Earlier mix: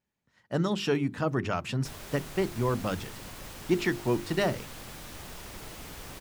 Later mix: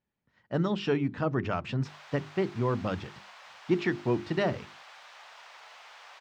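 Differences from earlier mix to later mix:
background: add inverse Chebyshev high-pass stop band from 210 Hz, stop band 60 dB; master: add air absorption 170 m

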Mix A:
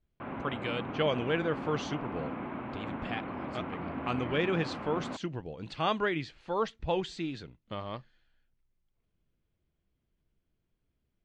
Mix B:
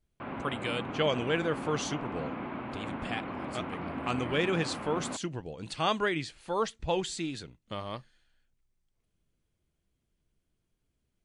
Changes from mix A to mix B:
speech: add high shelf 6900 Hz -6 dB; master: remove air absorption 200 m

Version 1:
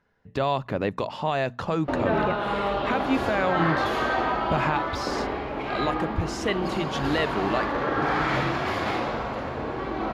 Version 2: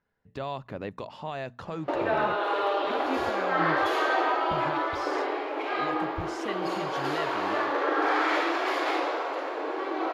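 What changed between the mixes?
speech -9.5 dB; background: add brick-wall FIR high-pass 280 Hz

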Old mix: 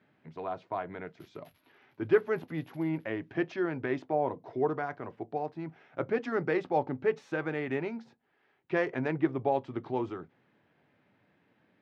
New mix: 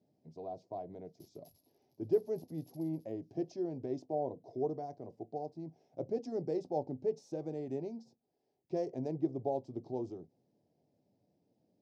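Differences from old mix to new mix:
speech -5.5 dB; master: add EQ curve 710 Hz 0 dB, 1400 Hz -30 dB, 3300 Hz -15 dB, 5100 Hz +7 dB, 12000 Hz +4 dB

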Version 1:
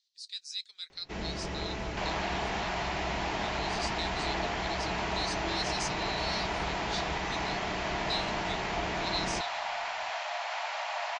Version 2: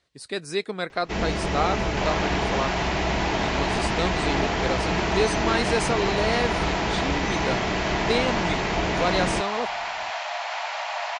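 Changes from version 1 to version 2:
speech: remove Butterworth band-pass 5000 Hz, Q 1.7; first sound +10.5 dB; second sound +5.0 dB

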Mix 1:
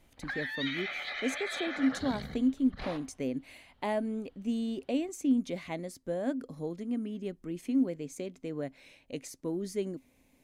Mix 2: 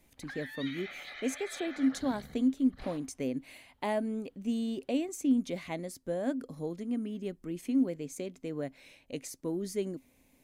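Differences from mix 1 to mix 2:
background -8.0 dB; master: add high shelf 9700 Hz +6.5 dB

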